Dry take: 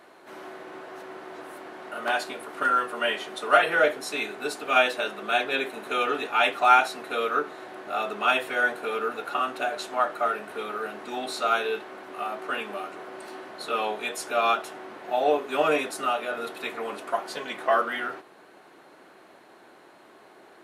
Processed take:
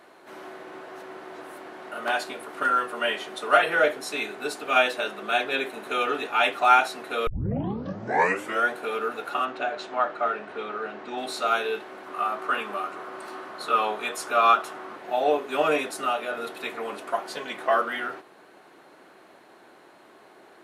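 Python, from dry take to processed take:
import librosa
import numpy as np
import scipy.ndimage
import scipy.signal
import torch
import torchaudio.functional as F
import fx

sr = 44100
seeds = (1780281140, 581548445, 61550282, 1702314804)

y = fx.gaussian_blur(x, sr, sigma=1.5, at=(9.44, 11.17), fade=0.02)
y = fx.peak_eq(y, sr, hz=1200.0, db=8.0, octaves=0.55, at=(12.06, 14.96))
y = fx.edit(y, sr, fx.tape_start(start_s=7.27, length_s=1.42), tone=tone)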